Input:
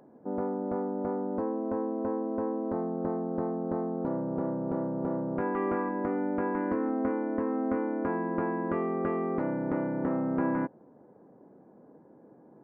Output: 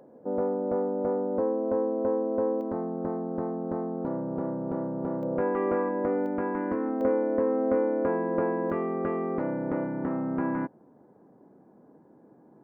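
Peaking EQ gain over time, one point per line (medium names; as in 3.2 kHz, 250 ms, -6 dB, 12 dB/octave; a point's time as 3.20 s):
peaking EQ 520 Hz 0.46 oct
+9 dB
from 2.61 s +0.5 dB
from 5.23 s +9 dB
from 6.26 s +1.5 dB
from 7.01 s +11 dB
from 8.70 s +3 dB
from 9.85 s -3.5 dB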